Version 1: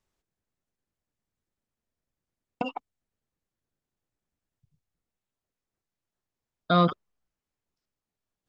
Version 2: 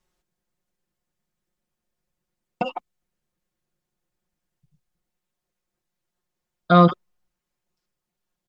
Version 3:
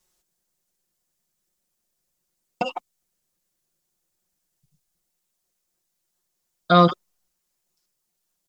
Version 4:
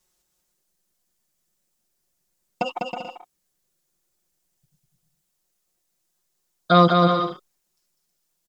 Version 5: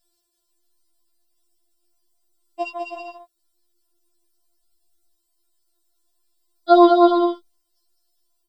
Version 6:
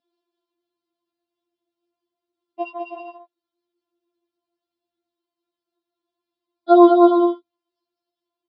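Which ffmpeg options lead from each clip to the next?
-af "aecho=1:1:5.6:0.92,volume=2.5dB"
-af "bass=f=250:g=-4,treble=f=4k:g=12"
-af "aecho=1:1:200|320|392|435.2|461.1:0.631|0.398|0.251|0.158|0.1"
-af "afftfilt=real='re*4*eq(mod(b,16),0)':imag='im*4*eq(mod(b,16),0)':win_size=2048:overlap=0.75,volume=2.5dB"
-af "highpass=170,equalizer=f=190:t=q:w=4:g=4,equalizer=f=270:t=q:w=4:g=10,equalizer=f=380:t=q:w=4:g=6,equalizer=f=530:t=q:w=4:g=6,equalizer=f=890:t=q:w=4:g=8,equalizer=f=1.9k:t=q:w=4:g=-3,lowpass=f=3.5k:w=0.5412,lowpass=f=3.5k:w=1.3066,volume=-4dB"

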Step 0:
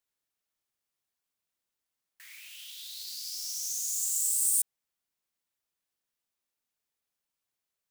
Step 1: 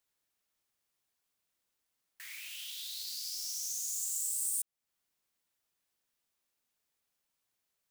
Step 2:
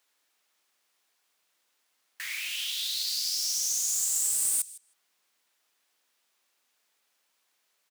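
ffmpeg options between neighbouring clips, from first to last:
-af "acompressor=threshold=-44dB:ratio=2,volume=3.5dB"
-filter_complex "[0:a]highpass=200,asplit=2[a][b];[b]adelay=158,lowpass=f=3.8k:p=1,volume=-13dB,asplit=2[c][d];[d]adelay=158,lowpass=f=3.8k:p=1,volume=0.19[e];[a][c][e]amix=inputs=3:normalize=0,asplit=2[f][g];[g]highpass=f=720:p=1,volume=8dB,asoftclip=type=tanh:threshold=-21.5dB[h];[f][h]amix=inputs=2:normalize=0,lowpass=f=5.8k:p=1,volume=-6dB,volume=8.5dB"

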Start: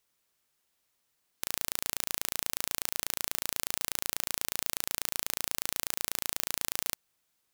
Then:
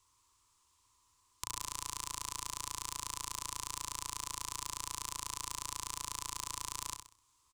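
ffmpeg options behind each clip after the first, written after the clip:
-filter_complex "[0:a]firequalizer=gain_entry='entry(110,0);entry(170,-21);entry(300,-10);entry(700,-26);entry(1000,5);entry(1500,-18);entry(2600,-13);entry(7400,-5);entry(15000,-26)':delay=0.05:min_phase=1,acompressor=threshold=-55dB:ratio=2.5,asplit=2[a][b];[b]aecho=0:1:64|128|192|256:0.422|0.16|0.0609|0.0231[c];[a][c]amix=inputs=2:normalize=0,volume=14.5dB"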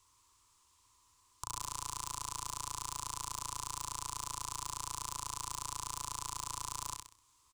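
-af "asoftclip=type=hard:threshold=-25dB,volume=3dB"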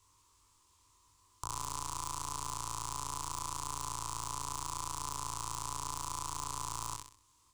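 -filter_complex "[0:a]asplit=2[a][b];[b]adynamicsmooth=sensitivity=2:basefreq=1.1k,volume=-3dB[c];[a][c]amix=inputs=2:normalize=0,flanger=delay=20:depth=2.5:speed=0.73,volume=3.5dB"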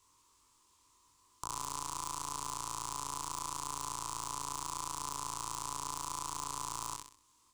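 -af "lowshelf=f=140:t=q:w=1.5:g=-6.5"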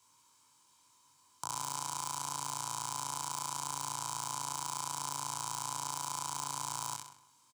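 -filter_complex "[0:a]highpass=f=120:w=0.5412,highpass=f=120:w=1.3066,aecho=1:1:1.3:0.5,asplit=2[a][b];[b]adelay=169,lowpass=f=2.5k:p=1,volume=-14.5dB,asplit=2[c][d];[d]adelay=169,lowpass=f=2.5k:p=1,volume=0.27,asplit=2[e][f];[f]adelay=169,lowpass=f=2.5k:p=1,volume=0.27[g];[a][c][e][g]amix=inputs=4:normalize=0,volume=1.5dB"

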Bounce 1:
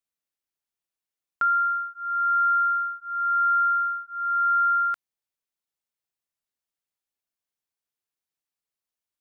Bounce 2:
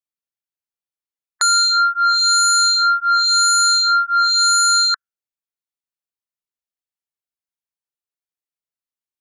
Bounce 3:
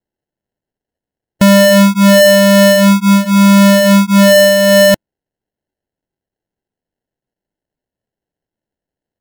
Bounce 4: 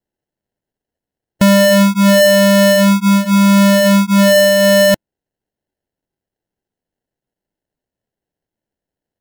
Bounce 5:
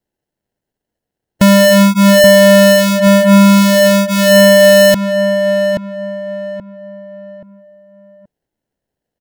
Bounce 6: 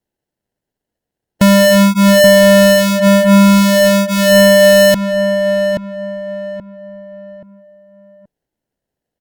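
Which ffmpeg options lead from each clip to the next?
-af "afftdn=nr=27:nf=-34,aeval=exprs='0.133*sin(PI/2*3.55*val(0)/0.133)':c=same,volume=5.5dB"
-af "acrusher=samples=37:mix=1:aa=0.000001,volume=8dB"
-af "alimiter=limit=-7dB:level=0:latency=1:release=256"
-filter_complex "[0:a]acontrast=33,asplit=2[a][b];[b]adelay=828,lowpass=f=1.5k:p=1,volume=-5.5dB,asplit=2[c][d];[d]adelay=828,lowpass=f=1.5k:p=1,volume=0.36,asplit=2[e][f];[f]adelay=828,lowpass=f=1.5k:p=1,volume=0.36,asplit=2[g][h];[h]adelay=828,lowpass=f=1.5k:p=1,volume=0.36[i];[c][e][g][i]amix=inputs=4:normalize=0[j];[a][j]amix=inputs=2:normalize=0,volume=-1.5dB"
-af "volume=-1dB" -ar 48000 -c:a libopus -b:a 96k

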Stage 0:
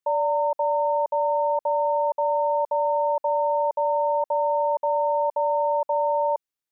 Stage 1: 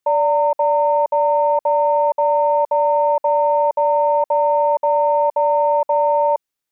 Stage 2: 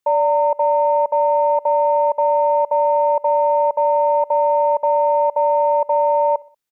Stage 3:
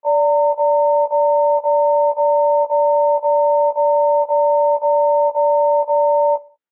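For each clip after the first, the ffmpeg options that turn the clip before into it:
-af "acontrast=77"
-af "aecho=1:1:62|124|186:0.0631|0.0309|0.0151"
-af "highpass=230,lowpass=2k,afftfilt=real='re*1.73*eq(mod(b,3),0)':imag='im*1.73*eq(mod(b,3),0)':win_size=2048:overlap=0.75"

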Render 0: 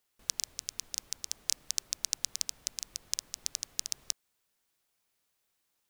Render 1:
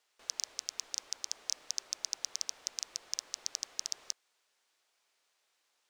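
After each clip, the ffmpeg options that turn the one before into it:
-filter_complex "[0:a]asoftclip=type=tanh:threshold=-18.5dB,acrossover=split=360 7900:gain=0.0794 1 0.141[a][b][c];[a][b][c]amix=inputs=3:normalize=0,volume=6dB"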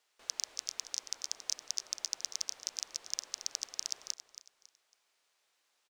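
-af "aecho=1:1:276|552|828:0.237|0.0711|0.0213"

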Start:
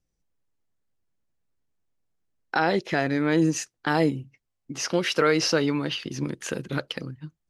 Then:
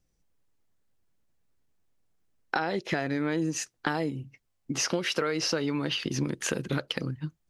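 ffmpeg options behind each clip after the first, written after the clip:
-af "acompressor=threshold=-29dB:ratio=12,volume=4.5dB"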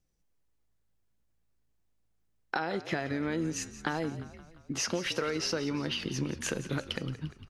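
-filter_complex "[0:a]bandreject=f=270.9:t=h:w=4,bandreject=f=541.8:t=h:w=4,bandreject=f=812.7:t=h:w=4,bandreject=f=1.0836k:t=h:w=4,bandreject=f=1.3545k:t=h:w=4,bandreject=f=1.6254k:t=h:w=4,bandreject=f=1.8963k:t=h:w=4,bandreject=f=2.1672k:t=h:w=4,bandreject=f=2.4381k:t=h:w=4,bandreject=f=2.709k:t=h:w=4,bandreject=f=2.9799k:t=h:w=4,bandreject=f=3.2508k:t=h:w=4,bandreject=f=3.5217k:t=h:w=4,bandreject=f=3.7926k:t=h:w=4,bandreject=f=4.0635k:t=h:w=4,bandreject=f=4.3344k:t=h:w=4,bandreject=f=4.6053k:t=h:w=4,bandreject=f=4.8762k:t=h:w=4,bandreject=f=5.1471k:t=h:w=4,bandreject=f=5.418k:t=h:w=4,bandreject=f=5.6889k:t=h:w=4,bandreject=f=5.9598k:t=h:w=4,bandreject=f=6.2307k:t=h:w=4,bandreject=f=6.5016k:t=h:w=4,bandreject=f=6.7725k:t=h:w=4,bandreject=f=7.0434k:t=h:w=4,bandreject=f=7.3143k:t=h:w=4,bandreject=f=7.5852k:t=h:w=4,bandreject=f=7.8561k:t=h:w=4,bandreject=f=8.127k:t=h:w=4,bandreject=f=8.3979k:t=h:w=4,bandreject=f=8.6688k:t=h:w=4,bandreject=f=8.9397k:t=h:w=4,bandreject=f=9.2106k:t=h:w=4,asplit=7[a][b][c][d][e][f][g];[b]adelay=174,afreqshift=-55,volume=-14.5dB[h];[c]adelay=348,afreqshift=-110,volume=-19.4dB[i];[d]adelay=522,afreqshift=-165,volume=-24.3dB[j];[e]adelay=696,afreqshift=-220,volume=-29.1dB[k];[f]adelay=870,afreqshift=-275,volume=-34dB[l];[g]adelay=1044,afreqshift=-330,volume=-38.9dB[m];[a][h][i][j][k][l][m]amix=inputs=7:normalize=0,volume=-3.5dB"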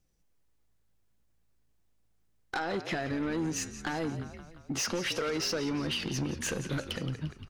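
-af "asoftclip=type=tanh:threshold=-29.5dB,volume=3.5dB"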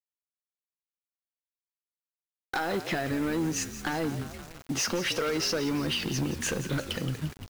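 -af "acrusher=bits=7:mix=0:aa=0.000001,volume=3dB"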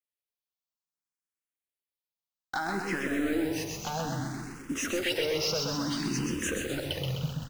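-filter_complex "[0:a]aecho=1:1:128|256|384|512|640|768|896|1024:0.631|0.372|0.22|0.13|0.0765|0.0451|0.0266|0.0157,asplit=2[a][b];[b]afreqshift=0.6[c];[a][c]amix=inputs=2:normalize=1"

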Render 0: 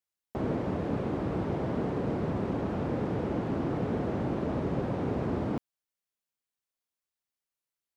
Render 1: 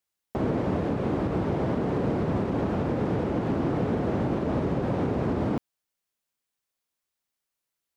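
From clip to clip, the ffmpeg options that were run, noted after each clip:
-af "alimiter=limit=-23dB:level=0:latency=1:release=89,volume=5.5dB"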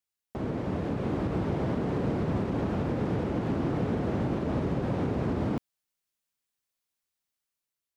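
-af "equalizer=f=630:t=o:w=2.9:g=-3.5,dynaudnorm=f=310:g=5:m=4dB,volume=-4.5dB"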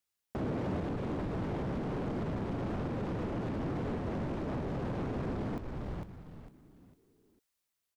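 -filter_complex "[0:a]asoftclip=type=tanh:threshold=-29dB,asplit=5[a][b][c][d][e];[b]adelay=452,afreqshift=-130,volume=-8dB[f];[c]adelay=904,afreqshift=-260,volume=-18.2dB[g];[d]adelay=1356,afreqshift=-390,volume=-28.3dB[h];[e]adelay=1808,afreqshift=-520,volume=-38.5dB[i];[a][f][g][h][i]amix=inputs=5:normalize=0,alimiter=level_in=7.5dB:limit=-24dB:level=0:latency=1:release=216,volume=-7.5dB,volume=2.5dB"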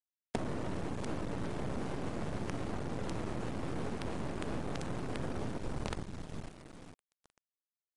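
-af "acompressor=threshold=-40dB:ratio=10,acrusher=bits=7:dc=4:mix=0:aa=0.000001,volume=9dB" -ar 22050 -c:a aac -b:a 48k

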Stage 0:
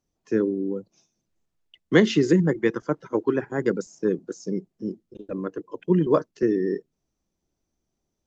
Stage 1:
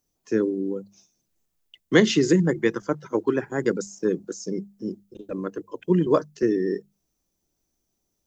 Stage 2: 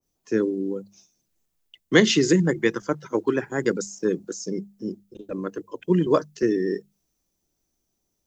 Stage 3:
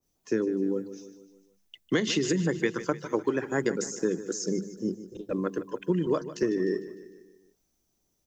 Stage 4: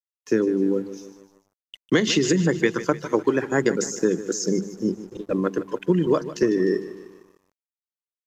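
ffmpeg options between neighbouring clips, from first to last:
-af "aemphasis=mode=production:type=50kf,bandreject=f=50:t=h:w=6,bandreject=f=100:t=h:w=6,bandreject=f=150:t=h:w=6,bandreject=f=200:t=h:w=6"
-af "adynamicequalizer=threshold=0.0141:dfrequency=1600:dqfactor=0.7:tfrequency=1600:tqfactor=0.7:attack=5:release=100:ratio=0.375:range=2:mode=boostabove:tftype=highshelf"
-af "acompressor=threshold=-23dB:ratio=12,aecho=1:1:151|302|453|604|755:0.2|0.106|0.056|0.0297|0.0157,volume=1dB"
-af "aeval=exprs='sgn(val(0))*max(abs(val(0))-0.00119,0)':c=same,aresample=32000,aresample=44100,volume=6.5dB"

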